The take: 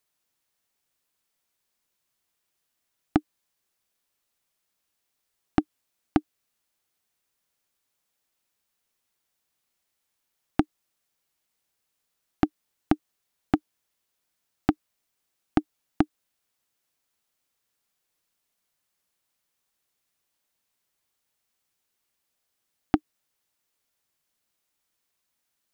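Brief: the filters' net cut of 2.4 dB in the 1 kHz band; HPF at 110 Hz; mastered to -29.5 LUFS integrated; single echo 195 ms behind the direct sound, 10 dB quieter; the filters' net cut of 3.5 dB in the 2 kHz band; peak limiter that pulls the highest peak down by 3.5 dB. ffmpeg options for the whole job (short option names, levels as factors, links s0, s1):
-af "highpass=110,equalizer=f=1000:t=o:g=-3,equalizer=f=2000:t=o:g=-3.5,alimiter=limit=0.335:level=0:latency=1,aecho=1:1:195:0.316,volume=1.78"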